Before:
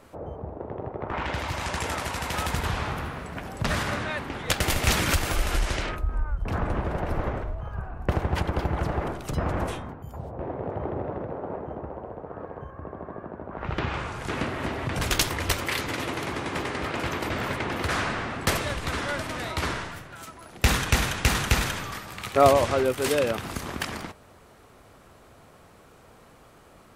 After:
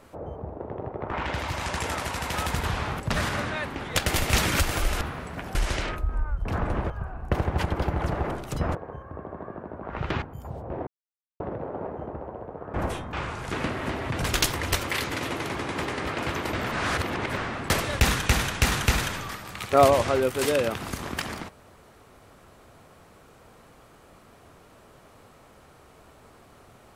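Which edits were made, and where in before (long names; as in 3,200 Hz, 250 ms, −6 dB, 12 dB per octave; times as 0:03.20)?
0:03.00–0:03.54: move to 0:05.55
0:06.90–0:07.67: remove
0:09.52–0:09.91: swap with 0:12.43–0:13.90
0:10.56–0:11.09: silence
0:17.49–0:18.14: reverse
0:18.77–0:20.63: remove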